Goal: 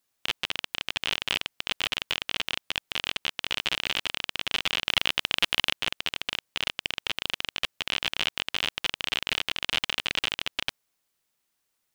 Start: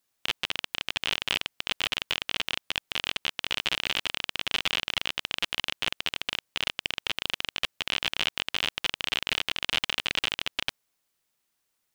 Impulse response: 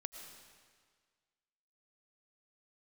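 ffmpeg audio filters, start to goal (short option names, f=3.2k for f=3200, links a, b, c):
-filter_complex "[0:a]asettb=1/sr,asplit=3[a][b][c];[a]atrim=end=4.854[d];[b]atrim=start=4.85:end=5.73,asetpts=PTS-STARTPTS,afade=t=in:d=0.004:c=qsin,afade=t=out:st=0.876:d=0.004:c=qsin,acontrast=52[e];[c]atrim=start=5.726[f];[d][e]acrossfade=d=0.004:c1=hsin:c2=qsin[g];[g][f]acrossfade=d=0.004:c1=qsin:c2=hsin"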